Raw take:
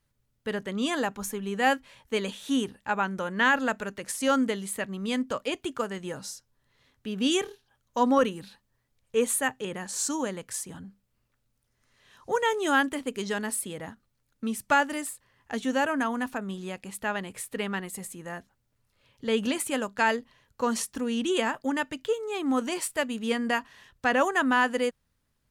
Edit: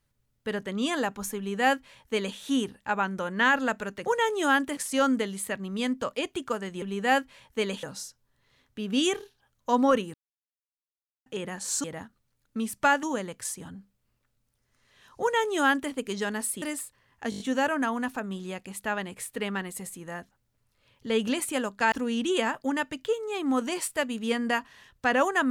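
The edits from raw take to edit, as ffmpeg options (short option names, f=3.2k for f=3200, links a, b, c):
-filter_complex "[0:a]asplit=16[a][b][c][d][e][f][g][h][i][j][k][l][m][n][o][p];[a]atrim=end=4.062[q];[b]atrim=start=12.298:end=13.012[r];[c]atrim=start=4.058:end=6.112[s];[d]atrim=start=1.368:end=2.382[t];[e]atrim=start=6.108:end=8.42,asetpts=PTS-STARTPTS,afade=t=out:st=2.308:d=0.004:c=hsin[u];[f]atrim=start=8.42:end=9.54,asetpts=PTS-STARTPTS,volume=0[v];[g]atrim=start=9.54:end=10.122,asetpts=PTS-STARTPTS,afade=t=in:d=0.004:c=hsin[w];[h]atrim=start=13.708:end=14.902[x];[i]atrim=start=10.118:end=13.712[y];[j]atrim=start=14.898:end=15.602[z];[k]atrim=start=15.578:end=15.602[aa];[l]atrim=start=15.578:end=15.602[ab];[m]atrim=start=15.578:end=15.602[ac];[n]atrim=start=15.578:end=15.602[ad];[o]atrim=start=15.578:end=20.102[ae];[p]atrim=start=20.918[af];[q][r]acrossfade=d=0.004:c1=hsin:c2=hsin[ag];[ag][s]acrossfade=d=0.004:c1=hsin:c2=hsin[ah];[ah][t]acrossfade=d=0.004:c1=hsin:c2=hsin[ai];[u][v][w]concat=n=3:v=0:a=1[aj];[ai][aj]acrossfade=d=0.004:c1=hsin:c2=hsin[ak];[ak][x]acrossfade=d=0.004:c1=hsin:c2=hsin[al];[al][y]acrossfade=d=0.004:c1=hsin:c2=hsin[am];[am][z]acrossfade=d=0.004:c1=hsin:c2=hsin[an];[an][aa]acrossfade=d=0.004:c1=hsin:c2=hsin[ao];[ao][ab]acrossfade=d=0.004:c1=hsin:c2=hsin[ap];[ap][ac]acrossfade=d=0.004:c1=hsin:c2=hsin[aq];[aq][ad]acrossfade=d=0.004:c1=hsin:c2=hsin[ar];[ar][ae]acrossfade=d=0.004:c1=hsin:c2=hsin[as];[as][af]acrossfade=d=0.004:c1=hsin:c2=hsin"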